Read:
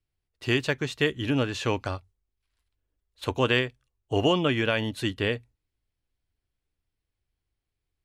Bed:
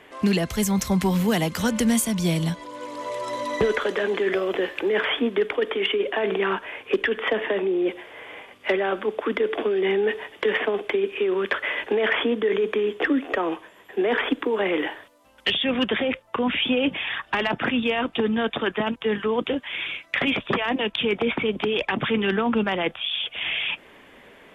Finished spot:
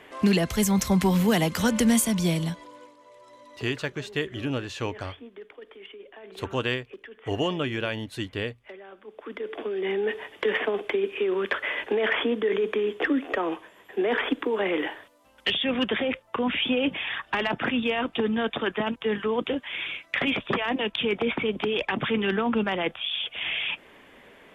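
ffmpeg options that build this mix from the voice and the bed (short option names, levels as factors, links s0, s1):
-filter_complex "[0:a]adelay=3150,volume=0.631[s0];[1:a]volume=8.91,afade=t=out:st=2.13:d=0.83:silence=0.0841395,afade=t=in:st=9.03:d=1.29:silence=0.112202[s1];[s0][s1]amix=inputs=2:normalize=0"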